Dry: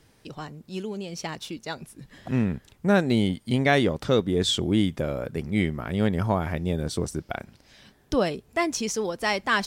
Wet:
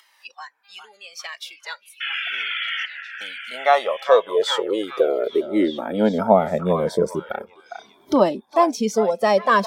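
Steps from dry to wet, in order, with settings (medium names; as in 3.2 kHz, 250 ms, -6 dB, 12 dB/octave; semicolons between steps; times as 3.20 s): spectral noise reduction 20 dB; 0.63–1.05 s: mains buzz 400 Hz, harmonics 12, -67 dBFS -1 dB/octave; in parallel at +1 dB: upward compressor, threshold -26 dBFS; 2.50–3.21 s: on the sum: inverted gate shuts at -15 dBFS, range -41 dB; 2.00–2.86 s: painted sound noise 1.3–3.5 kHz -23 dBFS; graphic EQ 125/500/1000/2000/8000 Hz -9/+9/+9/-7/-6 dB; high-pass sweep 2 kHz -> 190 Hz, 2.65–6.47 s; on a send: repeats whose band climbs or falls 405 ms, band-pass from 1.1 kHz, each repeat 0.7 oct, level -5.5 dB; on the sum: Shepard-style flanger falling 0.37 Hz; trim -1 dB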